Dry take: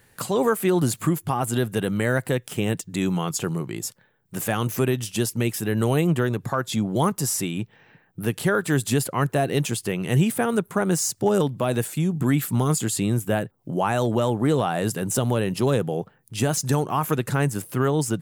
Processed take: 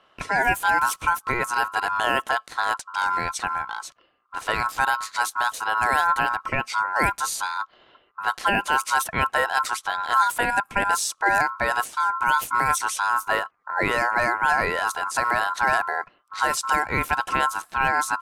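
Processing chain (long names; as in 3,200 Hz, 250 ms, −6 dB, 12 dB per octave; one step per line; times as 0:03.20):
low-pass that shuts in the quiet parts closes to 2,700 Hz, open at −17 dBFS
ring modulation 1,200 Hz
level +2.5 dB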